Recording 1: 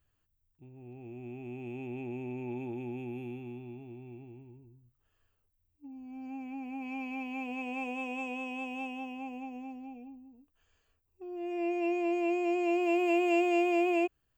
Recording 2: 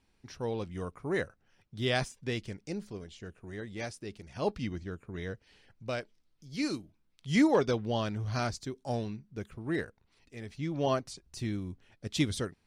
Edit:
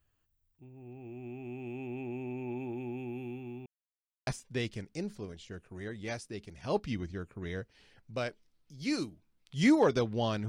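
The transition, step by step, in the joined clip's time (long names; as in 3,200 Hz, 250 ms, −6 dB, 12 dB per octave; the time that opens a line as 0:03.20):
recording 1
0:03.66–0:04.27: silence
0:04.27: continue with recording 2 from 0:01.99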